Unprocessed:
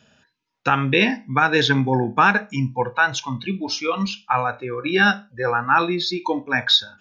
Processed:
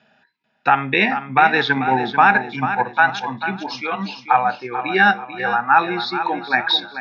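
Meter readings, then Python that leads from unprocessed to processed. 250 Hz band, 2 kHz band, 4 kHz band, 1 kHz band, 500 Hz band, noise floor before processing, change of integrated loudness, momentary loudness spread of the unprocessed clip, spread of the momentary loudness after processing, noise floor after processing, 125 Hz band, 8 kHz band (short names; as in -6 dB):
-2.5 dB, +3.0 dB, -2.5 dB, +5.5 dB, -1.5 dB, -68 dBFS, +2.0 dB, 9 LU, 10 LU, -66 dBFS, -6.0 dB, n/a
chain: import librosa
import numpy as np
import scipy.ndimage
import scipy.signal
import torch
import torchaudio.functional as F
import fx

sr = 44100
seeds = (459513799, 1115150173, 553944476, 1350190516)

p1 = fx.echo_feedback(x, sr, ms=440, feedback_pct=39, wet_db=-10.0)
p2 = fx.level_steps(p1, sr, step_db=9)
p3 = p1 + F.gain(torch.from_numpy(p2), -1.0).numpy()
p4 = fx.cabinet(p3, sr, low_hz=210.0, low_slope=12, high_hz=4200.0, hz=(300.0, 500.0, 770.0, 1100.0, 2000.0, 3100.0), db=(-5, -7, 9, -3, 5, -7))
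y = F.gain(torch.from_numpy(p4), -2.5).numpy()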